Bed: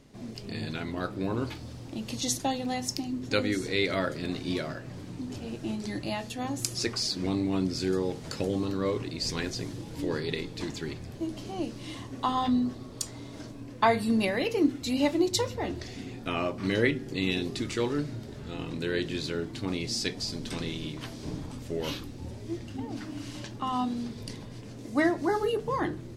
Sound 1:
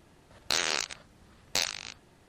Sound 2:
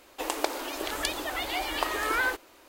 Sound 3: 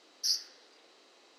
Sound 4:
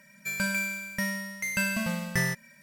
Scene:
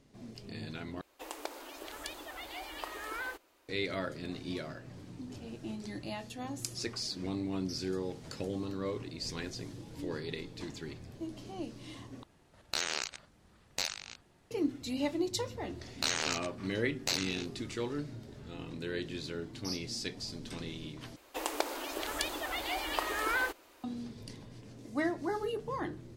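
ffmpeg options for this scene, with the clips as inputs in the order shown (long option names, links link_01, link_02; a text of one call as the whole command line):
ffmpeg -i bed.wav -i cue0.wav -i cue1.wav -i cue2.wav -filter_complex "[2:a]asplit=2[link_01][link_02];[3:a]asplit=2[link_03][link_04];[1:a]asplit=2[link_05][link_06];[0:a]volume=-7.5dB[link_07];[link_03]lowpass=11000[link_08];[link_06]asplit=2[link_09][link_10];[link_10]adelay=13,volume=-4dB[link_11];[link_09][link_11]amix=inputs=2:normalize=0[link_12];[link_07]asplit=4[link_13][link_14][link_15][link_16];[link_13]atrim=end=1.014[link_17];[link_01]atrim=end=2.68,asetpts=PTS-STARTPTS,volume=-12.5dB[link_18];[link_14]atrim=start=3.686:end=12.234[link_19];[link_05]atrim=end=2.28,asetpts=PTS-STARTPTS,volume=-6dB[link_20];[link_15]atrim=start=14.506:end=21.164[link_21];[link_02]atrim=end=2.68,asetpts=PTS-STARTPTS,volume=-4.5dB[link_22];[link_16]atrim=start=23.836[link_23];[link_08]atrim=end=1.38,asetpts=PTS-STARTPTS,volume=-14.5dB,afade=type=in:duration=0.004:curve=hsin,afade=type=out:start_time=1.376:duration=0.004:curve=hsin,adelay=7450[link_24];[link_12]atrim=end=2.28,asetpts=PTS-STARTPTS,volume=-5.5dB,afade=type=in:duration=0.004:curve=hsin,afade=type=out:start_time=2.276:duration=0.004:curve=hsin,adelay=15520[link_25];[link_04]atrim=end=1.38,asetpts=PTS-STARTPTS,volume=-11dB,afade=type=in:duration=0.004:curve=hsin,afade=type=out:start_time=1.376:duration=0.004:curve=hsin,adelay=19410[link_26];[link_17][link_18]acrossfade=duration=0.004:curve1=hsin:curve2=hsin[link_27];[link_27][link_19]acrossfade=duration=0.004:curve1=hsin:curve2=hsin[link_28];[link_28][link_20]acrossfade=duration=0.004:curve1=hsin:curve2=hsin[link_29];[link_29][link_21]acrossfade=duration=0.004:curve1=hsin:curve2=hsin[link_30];[link_30][link_22]acrossfade=duration=0.004:curve1=hsin:curve2=hsin[link_31];[link_31][link_23]acrossfade=duration=0.004:curve1=hsin:curve2=hsin[link_32];[link_32][link_24][link_25][link_26]amix=inputs=4:normalize=0" out.wav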